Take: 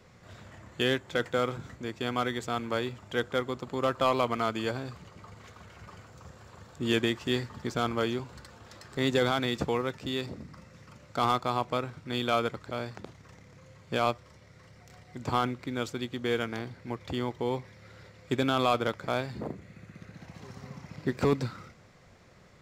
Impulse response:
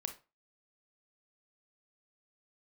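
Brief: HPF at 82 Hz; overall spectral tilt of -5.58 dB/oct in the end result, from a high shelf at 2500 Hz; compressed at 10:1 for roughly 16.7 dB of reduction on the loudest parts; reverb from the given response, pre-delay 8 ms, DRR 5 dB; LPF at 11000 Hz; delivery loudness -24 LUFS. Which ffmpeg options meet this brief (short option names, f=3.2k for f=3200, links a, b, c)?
-filter_complex "[0:a]highpass=82,lowpass=11k,highshelf=f=2.5k:g=-8,acompressor=threshold=-39dB:ratio=10,asplit=2[a][b];[1:a]atrim=start_sample=2205,adelay=8[c];[b][c]afir=irnorm=-1:irlink=0,volume=-4dB[d];[a][d]amix=inputs=2:normalize=0,volume=20dB"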